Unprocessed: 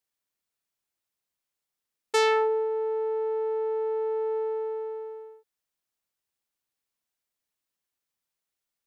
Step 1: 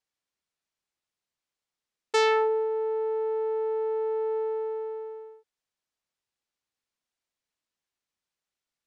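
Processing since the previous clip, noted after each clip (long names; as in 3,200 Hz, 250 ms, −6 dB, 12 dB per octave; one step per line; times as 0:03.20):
low-pass filter 7,200 Hz 12 dB per octave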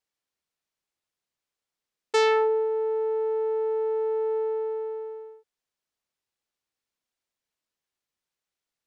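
parametric band 450 Hz +2 dB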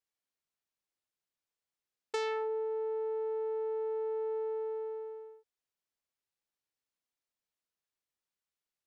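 downward compressor 4 to 1, threshold −26 dBFS, peak gain reduction 7 dB
level −6.5 dB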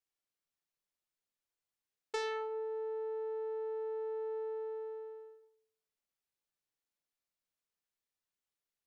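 rectangular room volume 71 cubic metres, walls mixed, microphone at 0.37 metres
level −3 dB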